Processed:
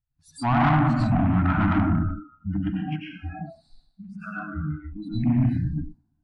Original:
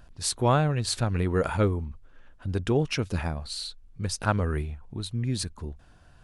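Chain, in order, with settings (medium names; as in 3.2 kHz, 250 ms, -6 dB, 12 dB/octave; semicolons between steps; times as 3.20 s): coarse spectral quantiser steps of 30 dB; gate -41 dBFS, range -11 dB; 2.56–4.72 s: compression 4:1, threshold -37 dBFS, peak gain reduction 16 dB; treble shelf 2.4 kHz -11.5 dB; plate-style reverb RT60 1.2 s, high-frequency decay 0.6×, pre-delay 80 ms, DRR -5 dB; spectral noise reduction 29 dB; saturation -21 dBFS, distortion -8 dB; low-pass that closes with the level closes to 2.9 kHz, closed at -22.5 dBFS; elliptic band-stop 310–680 Hz, stop band 40 dB; trim +6.5 dB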